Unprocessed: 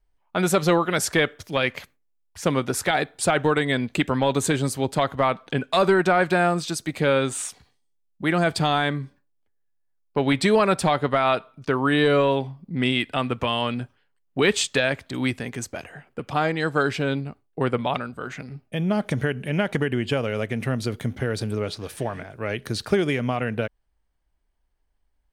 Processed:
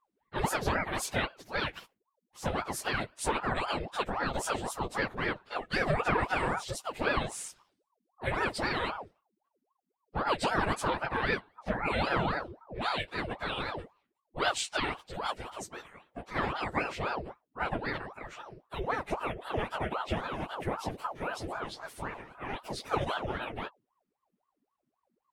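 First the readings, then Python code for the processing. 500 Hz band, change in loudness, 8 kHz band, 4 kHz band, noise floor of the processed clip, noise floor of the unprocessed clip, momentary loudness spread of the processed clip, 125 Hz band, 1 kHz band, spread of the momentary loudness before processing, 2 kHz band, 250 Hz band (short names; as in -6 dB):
-12.5 dB, -10.0 dB, -10.0 dB, -9.0 dB, -83 dBFS, -69 dBFS, 12 LU, -12.5 dB, -6.5 dB, 12 LU, -7.0 dB, -14.0 dB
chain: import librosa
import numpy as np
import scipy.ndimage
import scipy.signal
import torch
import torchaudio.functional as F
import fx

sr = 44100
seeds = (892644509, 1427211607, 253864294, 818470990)

y = fx.phase_scramble(x, sr, seeds[0], window_ms=50)
y = fx.hum_notches(y, sr, base_hz=50, count=2)
y = fx.ring_lfo(y, sr, carrier_hz=670.0, swing_pct=70, hz=3.8)
y = y * 10.0 ** (-7.0 / 20.0)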